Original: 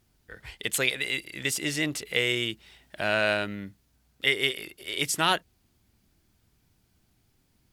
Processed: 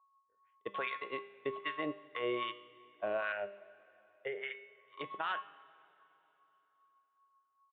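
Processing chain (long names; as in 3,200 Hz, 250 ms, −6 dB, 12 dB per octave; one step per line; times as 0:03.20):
steady tone 1,100 Hz −34 dBFS
noise gate −27 dBFS, range −39 dB
downsampling to 8,000 Hz
downward compressor 5 to 1, threshold −28 dBFS, peak gain reduction 9.5 dB
LFO wah 2.5 Hz 460–1,500 Hz, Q 2.1
brickwall limiter −33.5 dBFS, peak gain reduction 11.5 dB
0:03.32–0:04.69: phaser with its sweep stopped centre 1,100 Hz, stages 6
tuned comb filter 200 Hz, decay 0.81 s, harmonics all, mix 70%
dense smooth reverb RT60 3.5 s, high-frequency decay 0.95×, DRR 19 dB
level +17 dB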